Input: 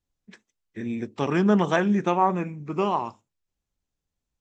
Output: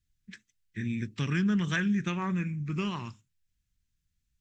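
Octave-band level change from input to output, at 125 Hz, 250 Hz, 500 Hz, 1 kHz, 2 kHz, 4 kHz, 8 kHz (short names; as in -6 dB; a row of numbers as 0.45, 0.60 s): -0.5 dB, -4.5 dB, -16.0 dB, -15.5 dB, -2.0 dB, -1.0 dB, n/a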